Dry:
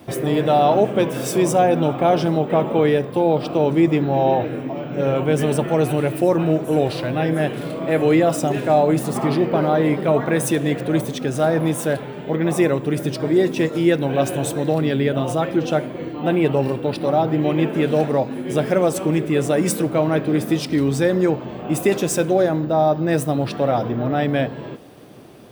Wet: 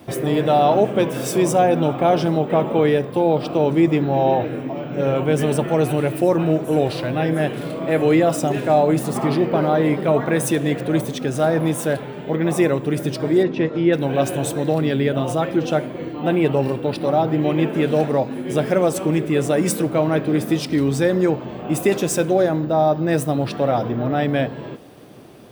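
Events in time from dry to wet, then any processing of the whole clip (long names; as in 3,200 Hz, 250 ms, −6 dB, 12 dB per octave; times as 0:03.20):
0:13.43–0:13.93: high-frequency loss of the air 230 metres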